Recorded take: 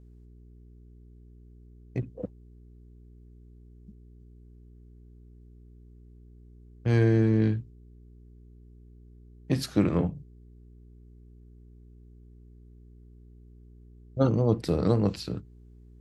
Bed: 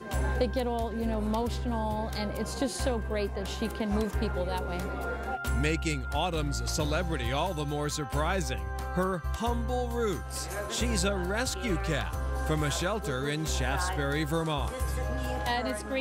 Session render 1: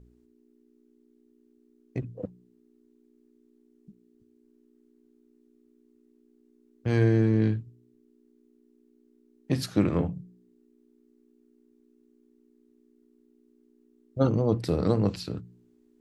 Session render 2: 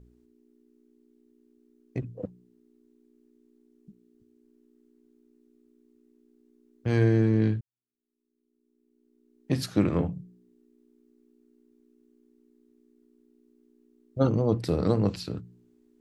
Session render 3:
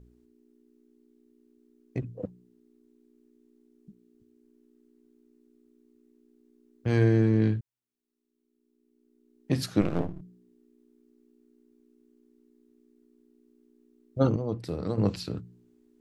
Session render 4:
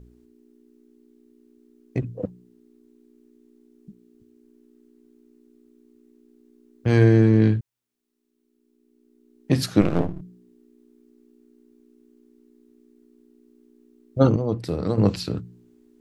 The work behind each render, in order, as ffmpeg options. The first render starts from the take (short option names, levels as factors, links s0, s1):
-af "bandreject=f=60:t=h:w=4,bandreject=f=120:t=h:w=4,bandreject=f=180:t=h:w=4"
-filter_complex "[0:a]asplit=2[s0][s1];[s0]atrim=end=7.61,asetpts=PTS-STARTPTS,afade=t=out:st=7.606:d=0.004:c=hsin[s2];[s1]atrim=start=7.61,asetpts=PTS-STARTPTS,afade=t=in:d=1.91:c=qua[s3];[s2][s3]concat=n=2:v=0:a=1"
-filter_complex "[0:a]asplit=3[s0][s1][s2];[s0]afade=t=out:st=9.8:d=0.02[s3];[s1]aeval=exprs='max(val(0),0)':c=same,afade=t=in:st=9.8:d=0.02,afade=t=out:st=10.2:d=0.02[s4];[s2]afade=t=in:st=10.2:d=0.02[s5];[s3][s4][s5]amix=inputs=3:normalize=0,asplit=3[s6][s7][s8];[s6]atrim=end=14.362[s9];[s7]atrim=start=14.358:end=14.982,asetpts=PTS-STARTPTS,volume=0.447[s10];[s8]atrim=start=14.978[s11];[s9][s10]acrossfade=d=0.004:c1=hsin:c2=hsin[s12];[s12][s11]acrossfade=d=0.004:c1=hsin:c2=hsin"
-af "volume=2.11"